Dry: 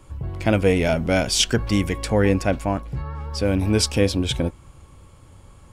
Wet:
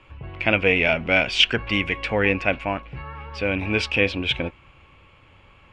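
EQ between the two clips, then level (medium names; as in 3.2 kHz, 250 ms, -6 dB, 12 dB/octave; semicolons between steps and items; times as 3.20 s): resonant low-pass 2.6 kHz, resonance Q 4.1; bass shelf 350 Hz -8.5 dB; 0.0 dB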